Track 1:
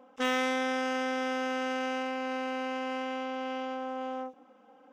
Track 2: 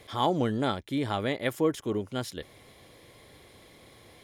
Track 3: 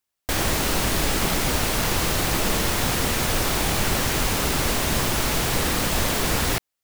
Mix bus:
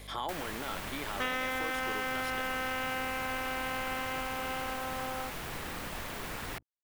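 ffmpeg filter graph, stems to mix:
-filter_complex "[0:a]equalizer=f=2.4k:w=0.54:g=5,adelay=1000,volume=0dB[a];[1:a]highpass=f=580:p=1,alimiter=level_in=2.5dB:limit=-24dB:level=0:latency=1,volume=-2.5dB,aeval=exprs='val(0)+0.00282*(sin(2*PI*50*n/s)+sin(2*PI*2*50*n/s)/2+sin(2*PI*3*50*n/s)/3+sin(2*PI*4*50*n/s)/4+sin(2*PI*5*50*n/s)/5)':c=same,volume=3dB[b];[2:a]bandreject=f=60:t=h:w=6,bandreject=f=120:t=h:w=6,aeval=exprs='sgn(val(0))*max(abs(val(0))-0.01,0)':c=same,volume=-12dB[c];[a][b][c]amix=inputs=3:normalize=0,highshelf=f=8.8k:g=7.5,acrossover=split=780|3000[d][e][f];[d]acompressor=threshold=-40dB:ratio=4[g];[e]acompressor=threshold=-32dB:ratio=4[h];[f]acompressor=threshold=-48dB:ratio=4[i];[g][h][i]amix=inputs=3:normalize=0"

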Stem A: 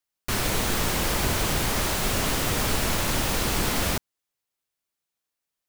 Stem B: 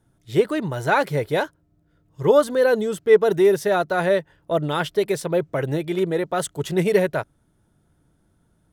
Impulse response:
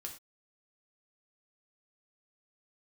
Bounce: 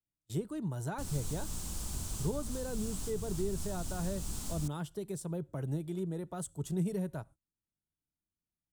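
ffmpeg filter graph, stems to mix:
-filter_complex "[0:a]adelay=700,volume=-9dB[a];[1:a]agate=range=-29dB:threshold=-39dB:ratio=16:detection=peak,equalizer=f=5.1k:w=0.49:g=-7.5,volume=-3dB,asplit=2[b][c];[c]volume=-16dB[d];[2:a]atrim=start_sample=2205[e];[d][e]afir=irnorm=-1:irlink=0[f];[a][b][f]amix=inputs=3:normalize=0,equalizer=f=125:t=o:w=1:g=-5,equalizer=f=500:t=o:w=1:g=-7,equalizer=f=2k:t=o:w=1:g=-11,equalizer=f=8k:t=o:w=1:g=12,acrossover=split=210[g][h];[h]acompressor=threshold=-47dB:ratio=2.5[i];[g][i]amix=inputs=2:normalize=0"

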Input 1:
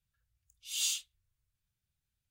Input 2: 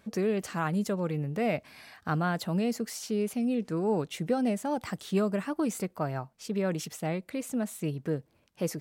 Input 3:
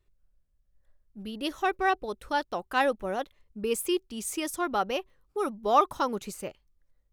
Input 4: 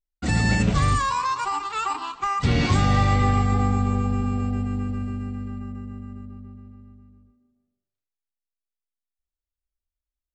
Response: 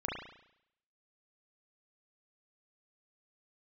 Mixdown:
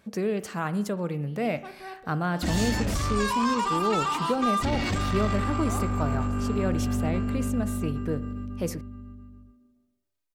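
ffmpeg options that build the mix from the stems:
-filter_complex "[0:a]adelay=1750,volume=-5dB[a];[1:a]volume=-0.5dB,asplit=2[b][c];[c]volume=-15.5dB[d];[2:a]volume=-19dB,asplit=2[e][f];[f]volume=-9.5dB[g];[3:a]aecho=1:1:3.2:0.64,alimiter=limit=-19.5dB:level=0:latency=1:release=41,asoftclip=type=tanh:threshold=-25.5dB,adelay=2200,volume=3dB[h];[4:a]atrim=start_sample=2205[i];[d][g]amix=inputs=2:normalize=0[j];[j][i]afir=irnorm=-1:irlink=0[k];[a][b][e][h][k]amix=inputs=5:normalize=0"

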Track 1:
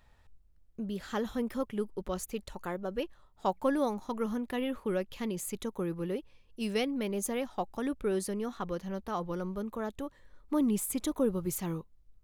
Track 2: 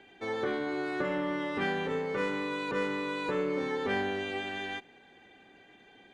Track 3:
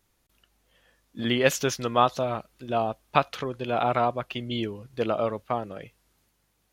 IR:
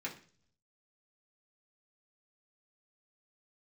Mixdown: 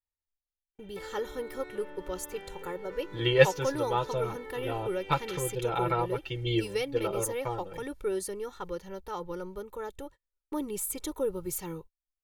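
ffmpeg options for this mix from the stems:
-filter_complex "[0:a]highshelf=f=5.6k:g=4.5,volume=-3.5dB,asplit=2[a][b];[1:a]acompressor=threshold=-39dB:ratio=6,adelay=750,volume=-6.5dB[c];[2:a]lowshelf=f=140:g=11.5,aecho=1:1:6:0.74,adelay=1950,volume=-1.5dB[d];[b]apad=whole_len=382901[e];[d][e]sidechaincompress=threshold=-42dB:ratio=3:attack=9.2:release=788[f];[a][c][f]amix=inputs=3:normalize=0,agate=range=-37dB:threshold=-48dB:ratio=16:detection=peak,aecho=1:1:2.2:0.75"

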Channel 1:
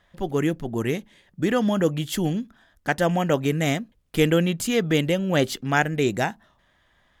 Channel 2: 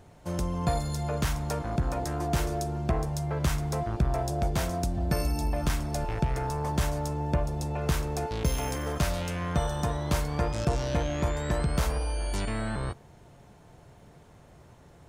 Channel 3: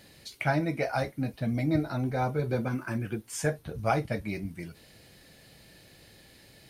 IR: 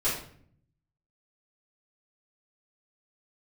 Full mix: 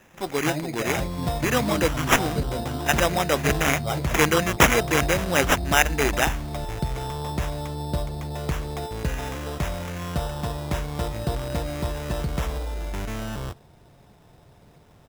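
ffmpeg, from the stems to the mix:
-filter_complex "[0:a]aemphasis=mode=production:type=riaa,volume=1dB[a];[1:a]adelay=600,volume=0dB[b];[2:a]volume=-2.5dB[c];[a][b][c]amix=inputs=3:normalize=0,acrusher=samples=10:mix=1:aa=0.000001"

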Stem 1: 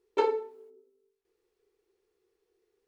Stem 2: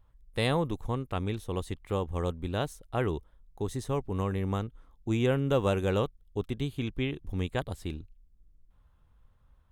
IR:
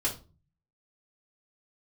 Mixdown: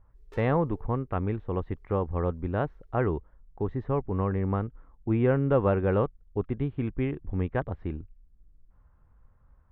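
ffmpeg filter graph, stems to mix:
-filter_complex "[0:a]acompressor=threshold=-32dB:ratio=6,aeval=exprs='(tanh(158*val(0)+0.5)-tanh(0.5))/158':c=same,adelay=150,volume=-3dB[a];[1:a]lowpass=f=1.9k:w=0.5412,lowpass=f=1.9k:w=1.3066,volume=3dB[b];[a][b]amix=inputs=2:normalize=0"

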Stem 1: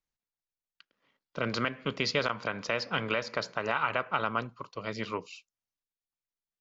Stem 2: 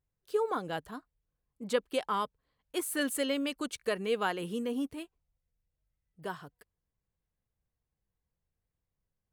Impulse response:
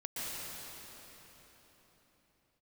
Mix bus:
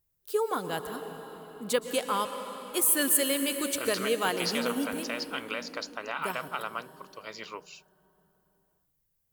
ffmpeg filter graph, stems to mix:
-filter_complex "[0:a]bass=f=250:g=-15,treble=f=4k:g=1,adelay=2400,volume=-5dB[a];[1:a]volume=0.5dB,asplit=2[b][c];[c]volume=-8.5dB[d];[2:a]atrim=start_sample=2205[e];[d][e]afir=irnorm=-1:irlink=0[f];[a][b][f]amix=inputs=3:normalize=0,aemphasis=mode=production:type=50fm"

